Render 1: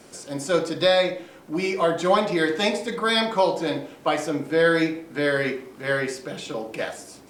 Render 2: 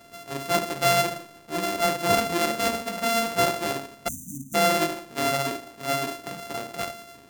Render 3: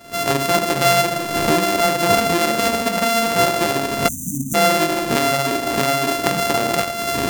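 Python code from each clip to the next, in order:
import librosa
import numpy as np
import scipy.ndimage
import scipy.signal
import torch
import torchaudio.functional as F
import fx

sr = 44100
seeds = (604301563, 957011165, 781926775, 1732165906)

y1 = np.r_[np.sort(x[:len(x) // 64 * 64].reshape(-1, 64), axis=1).ravel(), x[len(x) // 64 * 64:]]
y1 = fx.spec_erase(y1, sr, start_s=4.08, length_s=0.46, low_hz=290.0, high_hz=5800.0)
y1 = y1 * librosa.db_to_amplitude(-2.5)
y2 = fx.recorder_agc(y1, sr, target_db=-16.0, rise_db_per_s=79.0, max_gain_db=30)
y2 = y2 * librosa.db_to_amplitude(5.5)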